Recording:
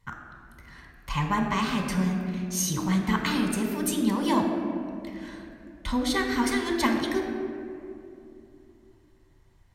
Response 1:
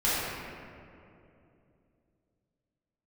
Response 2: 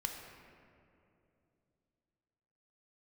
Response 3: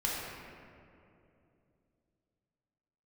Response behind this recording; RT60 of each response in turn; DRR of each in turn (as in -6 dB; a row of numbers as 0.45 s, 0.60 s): 2; 2.7 s, 2.8 s, 2.7 s; -11.5 dB, 2.0 dB, -5.5 dB